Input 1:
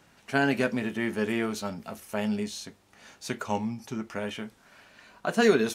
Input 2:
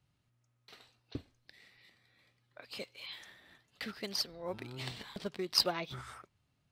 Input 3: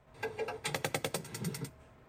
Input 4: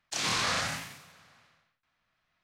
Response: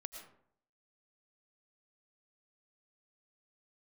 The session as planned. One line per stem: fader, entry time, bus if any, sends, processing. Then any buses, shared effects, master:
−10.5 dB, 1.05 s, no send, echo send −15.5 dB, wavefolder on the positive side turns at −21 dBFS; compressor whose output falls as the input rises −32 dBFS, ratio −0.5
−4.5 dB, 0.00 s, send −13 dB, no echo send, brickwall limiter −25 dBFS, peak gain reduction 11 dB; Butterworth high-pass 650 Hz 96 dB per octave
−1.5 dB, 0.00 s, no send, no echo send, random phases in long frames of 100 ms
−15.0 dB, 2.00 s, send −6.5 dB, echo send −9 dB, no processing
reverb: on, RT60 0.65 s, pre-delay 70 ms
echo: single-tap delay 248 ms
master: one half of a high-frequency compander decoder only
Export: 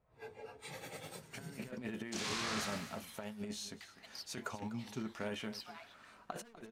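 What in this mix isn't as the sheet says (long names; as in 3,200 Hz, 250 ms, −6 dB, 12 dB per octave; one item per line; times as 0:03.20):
stem 2 −4.5 dB → −14.5 dB
stem 3 −1.5 dB → −12.0 dB
reverb return +8.5 dB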